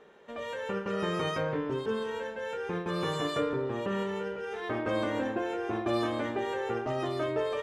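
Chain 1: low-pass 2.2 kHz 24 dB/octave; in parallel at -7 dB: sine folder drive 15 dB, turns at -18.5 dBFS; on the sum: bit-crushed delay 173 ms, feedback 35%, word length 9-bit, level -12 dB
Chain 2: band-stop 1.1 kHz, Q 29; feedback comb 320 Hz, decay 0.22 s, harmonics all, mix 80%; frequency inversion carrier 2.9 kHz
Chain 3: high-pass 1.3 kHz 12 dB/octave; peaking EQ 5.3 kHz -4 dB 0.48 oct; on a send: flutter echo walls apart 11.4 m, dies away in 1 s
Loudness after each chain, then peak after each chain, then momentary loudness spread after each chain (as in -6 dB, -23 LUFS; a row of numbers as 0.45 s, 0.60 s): -25.5 LUFS, -40.5 LUFS, -38.5 LUFS; -14.5 dBFS, -27.5 dBFS, -24.0 dBFS; 1 LU, 8 LU, 6 LU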